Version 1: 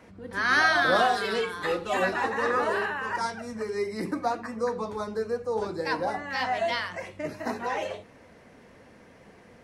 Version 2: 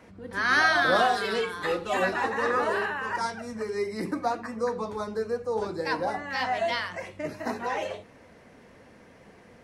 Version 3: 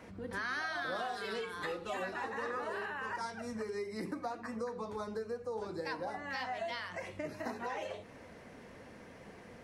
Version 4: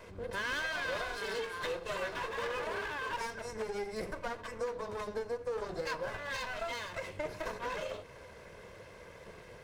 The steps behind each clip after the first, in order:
no audible change
compression 4:1, threshold -38 dBFS, peak gain reduction 17 dB
comb filter that takes the minimum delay 1.9 ms; trim +3 dB

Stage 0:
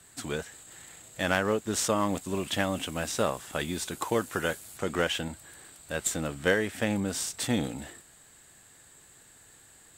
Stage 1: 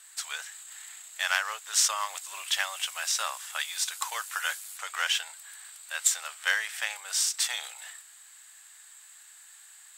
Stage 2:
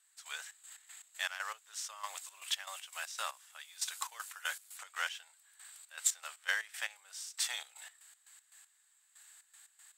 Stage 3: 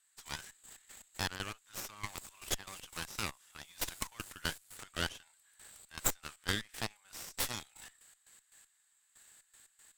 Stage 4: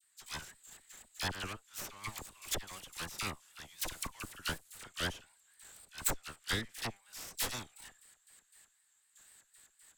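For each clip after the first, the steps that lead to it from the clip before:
dynamic bell 5.4 kHz, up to +5 dB, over -49 dBFS, Q 2.1; Bessel high-pass 1.4 kHz, order 6; trim +4.5 dB
trance gate "..xx.x.x.x.x.." 118 bpm -12 dB; trim -6.5 dB
in parallel at +2 dB: compression, threshold -45 dBFS, peak gain reduction 18.5 dB; on the sum: Chebyshev shaper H 3 -14 dB, 6 -11 dB, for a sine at -13.5 dBFS; trim -1.5 dB
vibrato 4 Hz 91 cents; phase dispersion lows, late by 40 ms, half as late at 1.5 kHz

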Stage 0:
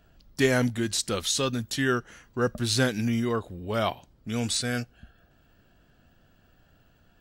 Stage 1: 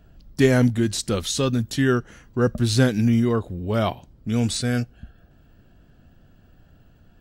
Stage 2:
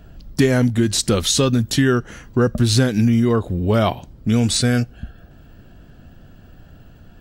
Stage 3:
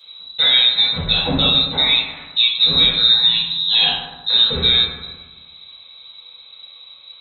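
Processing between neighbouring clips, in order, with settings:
bass shelf 460 Hz +9.5 dB
compression 4:1, threshold -22 dBFS, peak gain reduction 9.5 dB; trim +9 dB
frequency inversion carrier 3.9 kHz; reverberation RT60 1.2 s, pre-delay 3 ms, DRR -10.5 dB; trim -7 dB

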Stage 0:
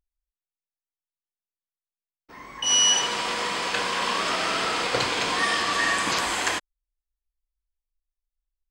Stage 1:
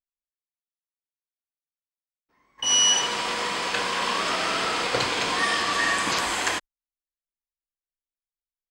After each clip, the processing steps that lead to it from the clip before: gate -37 dBFS, range -23 dB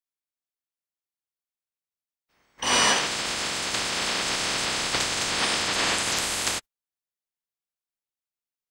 spectral peaks clipped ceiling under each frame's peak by 20 dB; trim -1 dB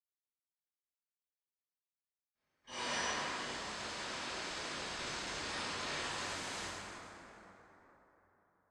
reverberation RT60 3.9 s, pre-delay 46 ms; trim -4.5 dB

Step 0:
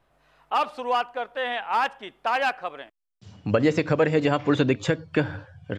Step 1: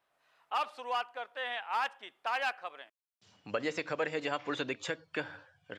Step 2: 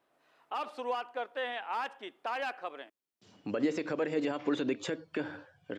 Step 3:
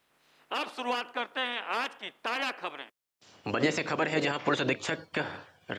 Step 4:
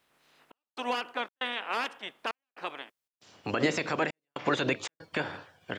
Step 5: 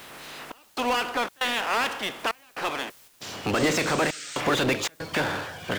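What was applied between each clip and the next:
high-pass 1 kHz 6 dB/octave; trim -6 dB
peak limiter -28.5 dBFS, peak gain reduction 9 dB; peaking EQ 300 Hz +13 dB 1.7 oct
spectral peaks clipped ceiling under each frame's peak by 17 dB; trim +3.5 dB
trance gate "xxxx..xxxx.xxx" 117 bpm -60 dB
power-law waveshaper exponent 0.5; painted sound noise, 3.55–4.41 s, 1.2–8.9 kHz -37 dBFS; trim -1.5 dB

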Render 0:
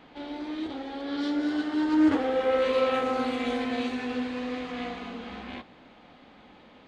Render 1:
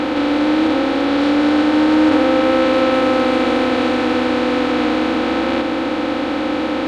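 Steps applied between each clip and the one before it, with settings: spectral levelling over time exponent 0.2; trim +5 dB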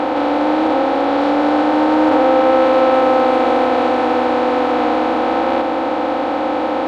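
peaking EQ 760 Hz +14.5 dB 1.5 oct; trim -6 dB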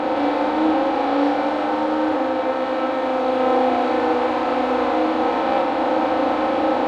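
gain riding; on a send: flutter echo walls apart 6 m, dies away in 0.46 s; on the sum: trim -6.5 dB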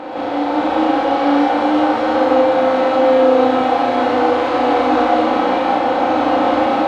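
level rider gain up to 7.5 dB; gated-style reverb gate 210 ms rising, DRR -6.5 dB; trim -7.5 dB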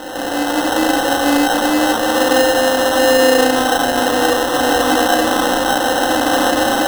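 sample-and-hold 19×

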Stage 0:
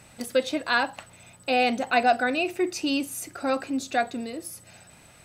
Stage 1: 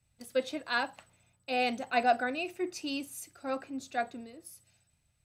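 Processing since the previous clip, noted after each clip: three bands expanded up and down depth 70%; trim -8.5 dB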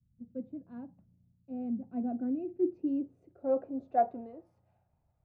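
low-pass sweep 200 Hz -> 820 Hz, 1.83–4.31 s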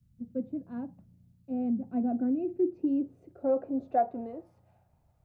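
compression 2:1, threshold -34 dBFS, peak gain reduction 7.5 dB; trim +7 dB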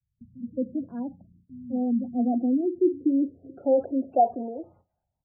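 bands offset in time lows, highs 220 ms, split 160 Hz; gate with hold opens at -54 dBFS; spectral gate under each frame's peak -25 dB strong; trim +6 dB

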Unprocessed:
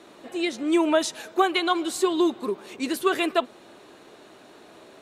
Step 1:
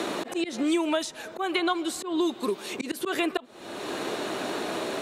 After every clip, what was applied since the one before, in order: slow attack 284 ms; three bands compressed up and down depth 100%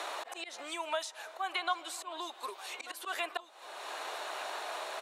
ladder high-pass 610 Hz, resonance 30%; delay 1189 ms -16.5 dB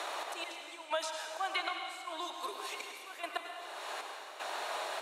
trance gate "xxxx...xx" 116 bpm -12 dB; on a send at -3 dB: reverberation RT60 1.9 s, pre-delay 87 ms

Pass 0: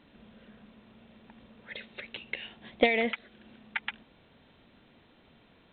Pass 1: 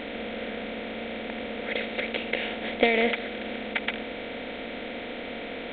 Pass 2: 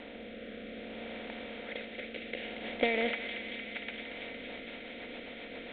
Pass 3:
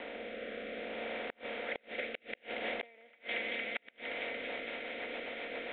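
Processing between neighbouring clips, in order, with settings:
spectral levelling over time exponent 0.4
rotary cabinet horn 0.6 Hz, later 7.5 Hz, at 3.99 s; feedback echo behind a high-pass 230 ms, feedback 82%, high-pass 1.8 kHz, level -6 dB; trim -7.5 dB
three-band isolator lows -13 dB, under 370 Hz, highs -22 dB, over 3.5 kHz; inverted gate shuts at -30 dBFS, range -32 dB; trim +5.5 dB

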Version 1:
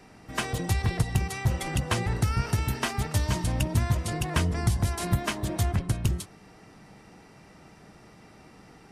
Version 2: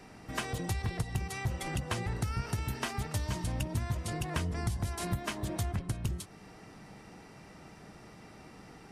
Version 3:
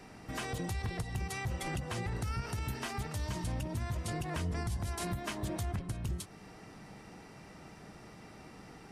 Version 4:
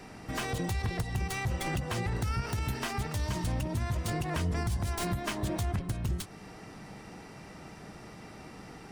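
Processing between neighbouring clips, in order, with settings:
compression 2:1, threshold -36 dBFS, peak gain reduction 10 dB
peak limiter -27 dBFS, peak gain reduction 8 dB
tracing distortion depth 0.06 ms; trim +4.5 dB

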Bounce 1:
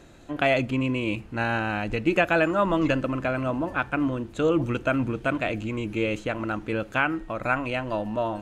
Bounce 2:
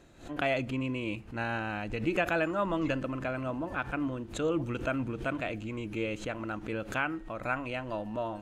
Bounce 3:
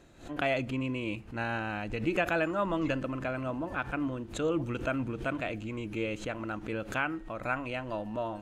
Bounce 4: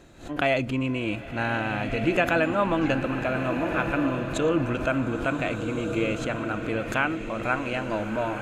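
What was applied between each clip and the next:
swell ahead of each attack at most 140 dB/s; trim -7.5 dB
no audible change
swelling reverb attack 1580 ms, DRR 6 dB; trim +6 dB

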